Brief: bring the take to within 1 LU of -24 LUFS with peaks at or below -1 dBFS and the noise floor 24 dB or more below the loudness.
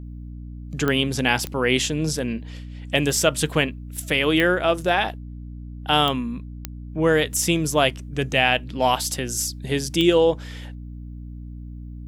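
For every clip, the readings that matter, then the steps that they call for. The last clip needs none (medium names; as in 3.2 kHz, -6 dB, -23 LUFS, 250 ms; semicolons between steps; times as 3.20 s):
clicks found 6; hum 60 Hz; highest harmonic 300 Hz; hum level -33 dBFS; loudness -21.5 LUFS; peak level -3.5 dBFS; loudness target -24.0 LUFS
-> de-click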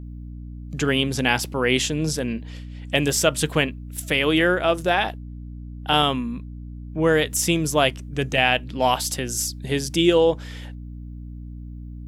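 clicks found 0; hum 60 Hz; highest harmonic 300 Hz; hum level -33 dBFS
-> hum notches 60/120/180/240/300 Hz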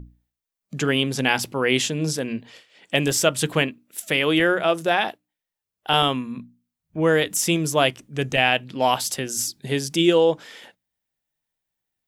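hum not found; loudness -21.5 LUFS; peak level -4.0 dBFS; loudness target -24.0 LUFS
-> trim -2.5 dB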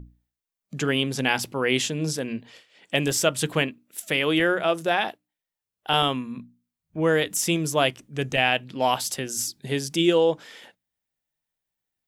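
loudness -24.0 LUFS; peak level -6.5 dBFS; noise floor -88 dBFS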